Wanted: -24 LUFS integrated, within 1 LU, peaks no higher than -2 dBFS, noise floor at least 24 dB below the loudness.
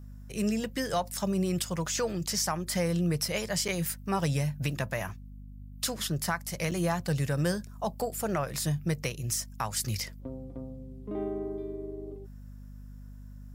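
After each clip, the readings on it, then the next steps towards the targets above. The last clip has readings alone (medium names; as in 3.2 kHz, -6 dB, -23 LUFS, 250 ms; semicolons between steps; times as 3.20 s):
dropouts 2; longest dropout 6.8 ms; hum 50 Hz; highest harmonic 250 Hz; hum level -43 dBFS; loudness -31.5 LUFS; peak level -16.5 dBFS; loudness target -24.0 LUFS
-> interpolate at 3.68/6.71 s, 6.8 ms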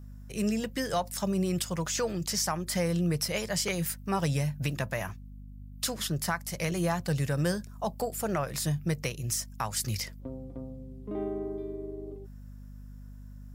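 dropouts 0; hum 50 Hz; highest harmonic 250 Hz; hum level -43 dBFS
-> hum notches 50/100/150/200/250 Hz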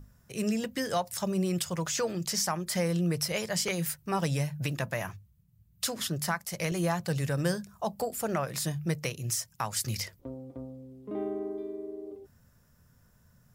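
hum not found; loudness -31.5 LUFS; peak level -16.5 dBFS; loudness target -24.0 LUFS
-> trim +7.5 dB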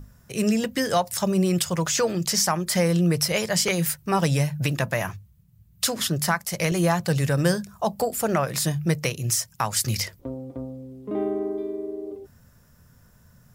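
loudness -24.0 LUFS; peak level -9.0 dBFS; noise floor -56 dBFS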